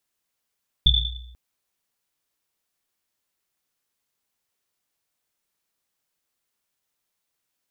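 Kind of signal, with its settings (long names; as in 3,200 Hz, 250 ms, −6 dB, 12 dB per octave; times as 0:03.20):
drum after Risset length 0.49 s, pitch 61 Hz, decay 1.07 s, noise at 3,500 Hz, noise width 140 Hz, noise 60%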